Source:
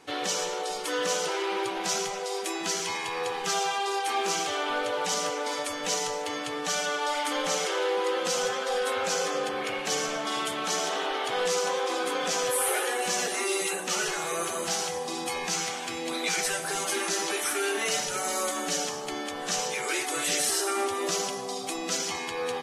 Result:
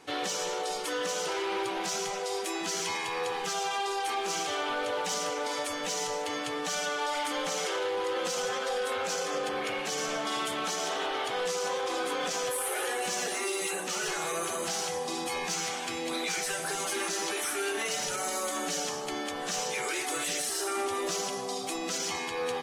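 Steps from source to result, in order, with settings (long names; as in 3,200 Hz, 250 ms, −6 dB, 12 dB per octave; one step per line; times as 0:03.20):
brickwall limiter −21.5 dBFS, peak gain reduction 6.5 dB
soft clipping −22.5 dBFS, distortion −23 dB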